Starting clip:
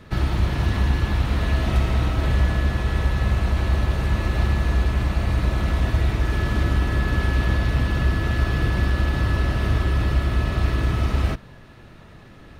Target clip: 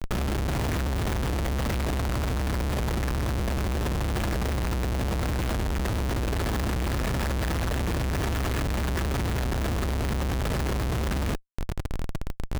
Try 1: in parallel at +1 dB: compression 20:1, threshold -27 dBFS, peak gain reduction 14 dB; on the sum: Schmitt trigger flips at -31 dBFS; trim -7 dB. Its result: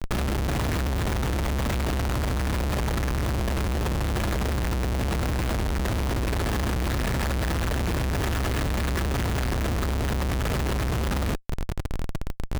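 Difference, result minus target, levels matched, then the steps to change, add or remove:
compression: peak gain reduction -7 dB
change: compression 20:1, threshold -34.5 dBFS, peak gain reduction 21.5 dB

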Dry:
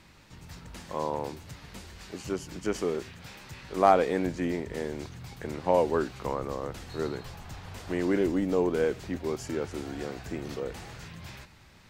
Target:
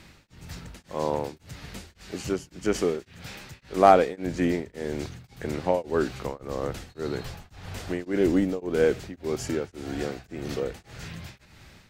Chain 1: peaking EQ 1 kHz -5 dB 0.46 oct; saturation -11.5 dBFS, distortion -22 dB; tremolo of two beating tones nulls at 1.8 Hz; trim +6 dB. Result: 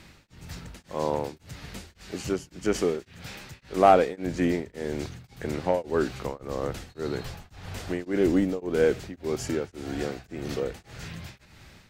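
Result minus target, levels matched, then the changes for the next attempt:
saturation: distortion +15 dB
change: saturation -3 dBFS, distortion -37 dB

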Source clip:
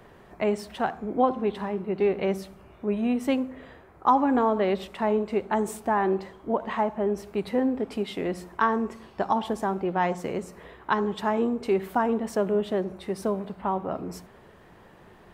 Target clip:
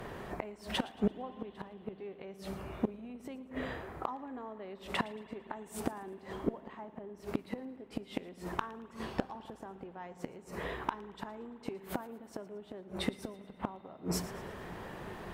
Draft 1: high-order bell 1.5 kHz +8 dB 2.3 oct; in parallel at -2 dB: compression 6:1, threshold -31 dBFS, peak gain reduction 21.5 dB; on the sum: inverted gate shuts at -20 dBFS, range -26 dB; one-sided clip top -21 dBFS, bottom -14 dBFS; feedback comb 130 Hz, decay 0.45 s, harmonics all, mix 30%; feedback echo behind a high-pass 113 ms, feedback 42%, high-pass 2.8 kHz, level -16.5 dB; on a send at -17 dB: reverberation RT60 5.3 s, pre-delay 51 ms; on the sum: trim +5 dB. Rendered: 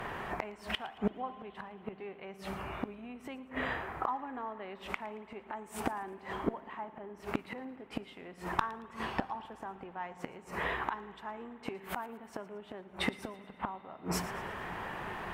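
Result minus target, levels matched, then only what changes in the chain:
2 kHz band +4.5 dB
remove: high-order bell 1.5 kHz +8 dB 2.3 oct

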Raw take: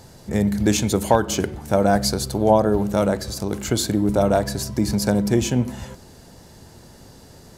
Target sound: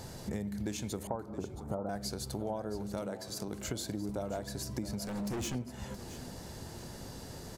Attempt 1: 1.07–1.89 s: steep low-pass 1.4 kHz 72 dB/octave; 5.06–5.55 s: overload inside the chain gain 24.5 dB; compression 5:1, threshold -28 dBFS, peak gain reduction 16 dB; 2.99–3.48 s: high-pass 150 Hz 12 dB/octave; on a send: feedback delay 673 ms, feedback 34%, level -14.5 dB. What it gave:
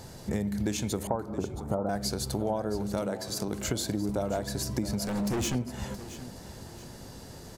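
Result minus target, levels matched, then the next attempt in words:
compression: peak gain reduction -7 dB
1.07–1.89 s: steep low-pass 1.4 kHz 72 dB/octave; 5.06–5.55 s: overload inside the chain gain 24.5 dB; compression 5:1, threshold -36.5 dBFS, peak gain reduction 23 dB; 2.99–3.48 s: high-pass 150 Hz 12 dB/octave; on a send: feedback delay 673 ms, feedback 34%, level -14.5 dB

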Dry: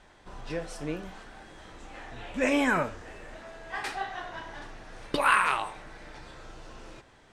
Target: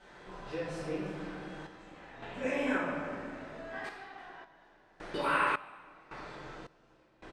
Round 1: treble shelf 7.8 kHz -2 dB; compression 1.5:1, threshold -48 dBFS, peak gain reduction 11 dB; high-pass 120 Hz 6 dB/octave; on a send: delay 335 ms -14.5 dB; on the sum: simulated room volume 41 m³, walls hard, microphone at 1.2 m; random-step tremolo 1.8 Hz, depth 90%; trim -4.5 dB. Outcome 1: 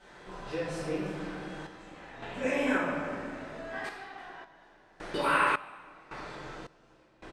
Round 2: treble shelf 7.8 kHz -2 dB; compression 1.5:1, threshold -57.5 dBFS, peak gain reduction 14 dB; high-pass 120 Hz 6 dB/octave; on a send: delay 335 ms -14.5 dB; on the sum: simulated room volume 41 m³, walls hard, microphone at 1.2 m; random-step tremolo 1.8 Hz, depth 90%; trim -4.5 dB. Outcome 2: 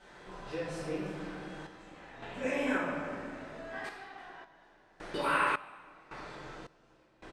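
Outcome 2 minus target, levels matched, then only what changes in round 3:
8 kHz band +3.0 dB
change: treble shelf 7.8 kHz -8.5 dB

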